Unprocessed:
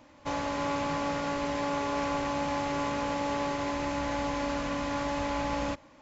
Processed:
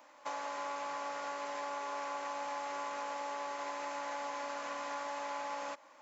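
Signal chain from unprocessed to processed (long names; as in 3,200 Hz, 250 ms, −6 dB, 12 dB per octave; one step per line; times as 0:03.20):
high-pass filter 820 Hz 12 dB per octave
parametric band 3,300 Hz −8 dB 2.1 octaves
downward compressor 3 to 1, threshold −43 dBFS, peak gain reduction 7.5 dB
level +4.5 dB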